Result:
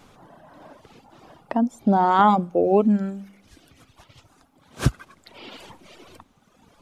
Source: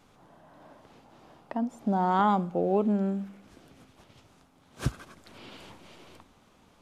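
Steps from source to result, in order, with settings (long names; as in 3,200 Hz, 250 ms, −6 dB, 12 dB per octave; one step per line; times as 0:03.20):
reverb reduction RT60 1.9 s
level +9 dB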